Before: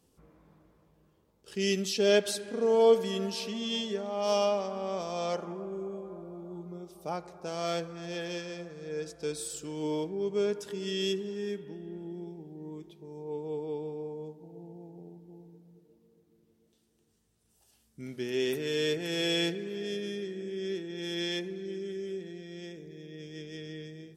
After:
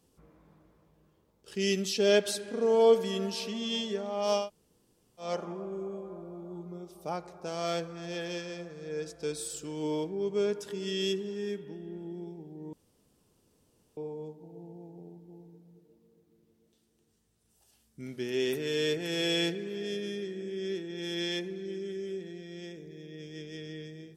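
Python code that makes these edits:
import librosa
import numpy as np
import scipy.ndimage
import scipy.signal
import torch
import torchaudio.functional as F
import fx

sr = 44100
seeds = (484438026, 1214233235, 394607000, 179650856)

y = fx.edit(x, sr, fx.room_tone_fill(start_s=4.42, length_s=0.83, crossfade_s=0.16),
    fx.room_tone_fill(start_s=12.73, length_s=1.24), tone=tone)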